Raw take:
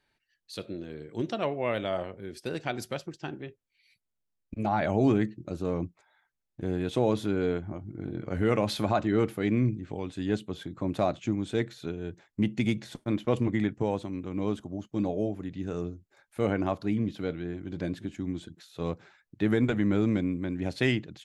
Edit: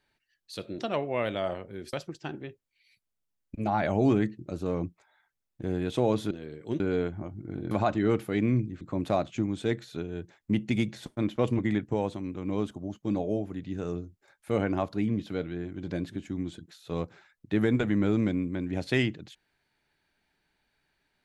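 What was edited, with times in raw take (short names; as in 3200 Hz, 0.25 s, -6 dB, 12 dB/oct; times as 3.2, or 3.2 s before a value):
0.79–1.28 move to 7.3
2.42–2.92 cut
8.21–8.8 cut
9.9–10.7 cut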